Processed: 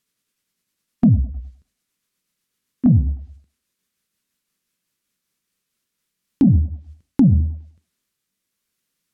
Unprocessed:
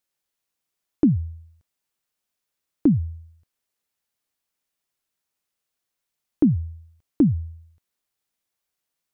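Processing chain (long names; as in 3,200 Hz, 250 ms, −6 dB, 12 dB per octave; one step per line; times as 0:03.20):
pitch glide at a constant tempo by −4 semitones ending unshifted
parametric band 200 Hz +8.5 dB 0.82 octaves
noise gate −53 dBFS, range −7 dB
in parallel at +1 dB: downward compressor 4 to 1, threshold −25 dBFS, peak gain reduction 14.5 dB
on the sum: parametric band 760 Hz −10.5 dB 0.73 octaves
soft clipping −5.5 dBFS, distortion −18 dB
flanger 0.89 Hz, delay 5.5 ms, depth 7.4 ms, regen −81%
feedback echo with a high-pass in the loop 103 ms, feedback 36%, high-pass 210 Hz, level −21 dB
treble cut that deepens with the level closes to 420 Hz, closed at −20 dBFS
boost into a limiter +18.5 dB
level −6 dB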